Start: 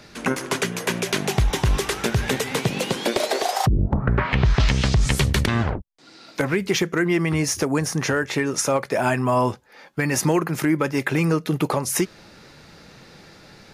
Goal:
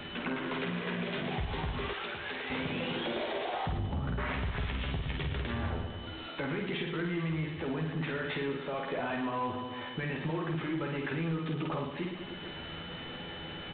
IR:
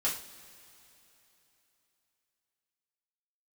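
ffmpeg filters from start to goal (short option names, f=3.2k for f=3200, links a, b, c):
-filter_complex "[0:a]alimiter=limit=-19dB:level=0:latency=1:release=40,asplit=2[a][b];[b]adelay=12,volume=-5dB[c];[a][c]amix=inputs=2:normalize=0,aeval=exprs='val(0)+0.00282*sin(2*PI*3000*n/s)':c=same,asplit=2[d][e];[e]aecho=0:1:50|115|199.5|309.4|452.2:0.631|0.398|0.251|0.158|0.1[f];[d][f]amix=inputs=2:normalize=0,acompressor=threshold=-43dB:ratio=2,asettb=1/sr,asplit=3[g][h][i];[g]atrim=end=1.934[j];[h]atrim=start=1.93:end=2.5,asetpts=PTS-STARTPTS,afade=t=in:d=0.004:c=qsin,afade=t=out:st=0.566:d=0.004:c=qsin,highpass=f=710:p=1[k];[i]atrim=start=2.496[l];[j][k]acrossfade=d=0.004:c1=hsin:c2=qsin[m];[m][l]acrossfade=d=0.004:c1=qsin:c2=hsin,asoftclip=type=tanh:threshold=-28dB,volume=3.5dB" -ar 8000 -c:a adpcm_g726 -b:a 24k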